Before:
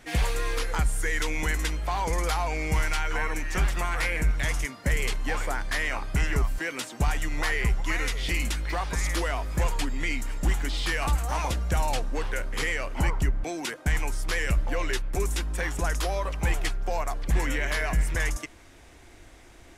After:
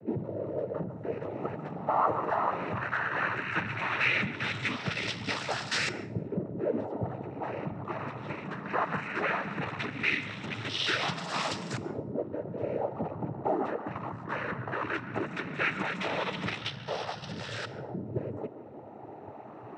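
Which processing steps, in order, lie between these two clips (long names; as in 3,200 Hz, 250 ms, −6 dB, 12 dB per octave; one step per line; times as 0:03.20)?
in parallel at −6.5 dB: wrap-around overflow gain 31 dB
0:16.61–0:18.05: on the sum: phaser with its sweep stopped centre 1,400 Hz, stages 8
soft clipping −30.5 dBFS, distortion −7 dB
auto-filter low-pass saw up 0.17 Hz 350–5,300 Hz
hum removal 219.9 Hz, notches 28
cochlear-implant simulation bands 12
on a send at −14 dB: convolution reverb RT60 0.45 s, pre-delay 135 ms
on the sum: level +4.5 dB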